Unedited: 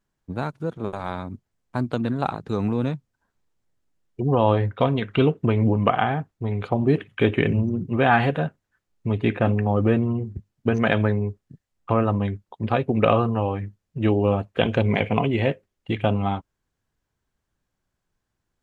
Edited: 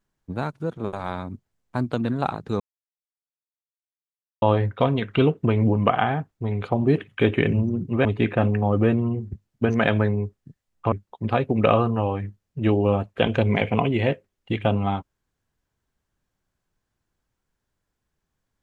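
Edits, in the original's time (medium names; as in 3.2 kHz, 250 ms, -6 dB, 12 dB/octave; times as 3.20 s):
2.60–4.42 s: mute
8.05–9.09 s: delete
11.96–12.31 s: delete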